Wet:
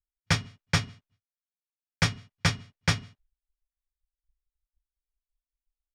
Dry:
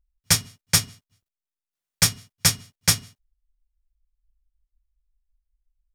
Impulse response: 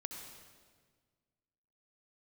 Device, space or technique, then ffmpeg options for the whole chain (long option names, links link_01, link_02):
hearing-loss simulation: -af "lowpass=2900,agate=range=-33dB:threshold=-57dB:ratio=3:detection=peak"